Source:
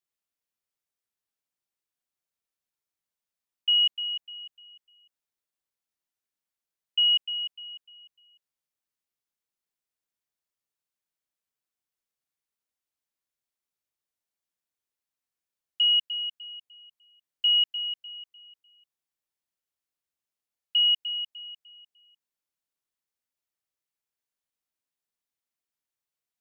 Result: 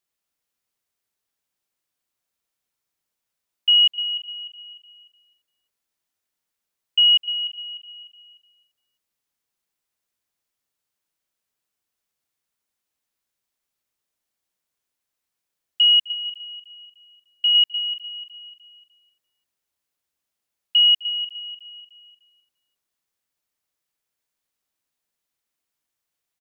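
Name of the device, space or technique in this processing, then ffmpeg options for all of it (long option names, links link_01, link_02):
ducked delay: -filter_complex "[0:a]asettb=1/sr,asplit=3[link_01][link_02][link_03];[link_01]atrim=end=16.124[link_04];[link_02]atrim=start=16.12:end=17.55,asetpts=PTS-STARTPTS,afade=type=in:duration=0.004:curve=qsin,afade=type=out:start_time=1.426:duration=0.004:curve=qsin,equalizer=frequency=2600:width_type=o:width=0.42:gain=-4.5[link_05];[link_03]atrim=start=17.546[link_06];[link_04][link_05]acrossfade=duration=0.004:curve1=hsin:curve2=qsin[link_07];[link_07][link_06]acrossfade=duration=0.004:curve1=qsin:curve2=hsin,asplit=3[link_08][link_09][link_10];[link_09]adelay=257,volume=-5.5dB[link_11];[link_10]apad=whole_len=1175656[link_12];[link_11][link_12]sidechaincompress=threshold=-38dB:ratio=8:attack=16:release=679[link_13];[link_08][link_13]amix=inputs=2:normalize=0,aecho=1:1:343:0.106,volume=6.5dB"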